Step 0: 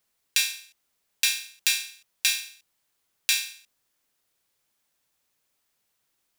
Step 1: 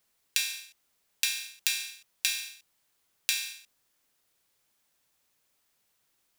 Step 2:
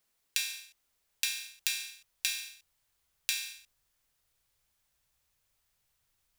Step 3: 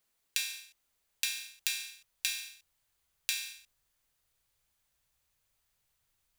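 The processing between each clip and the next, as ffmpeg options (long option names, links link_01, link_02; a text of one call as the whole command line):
ffmpeg -i in.wav -af "acompressor=threshold=-26dB:ratio=6,volume=1.5dB" out.wav
ffmpeg -i in.wav -af "asubboost=boost=8.5:cutoff=90,volume=-3.5dB" out.wav
ffmpeg -i in.wav -af "bandreject=frequency=5400:width=22,volume=-1dB" out.wav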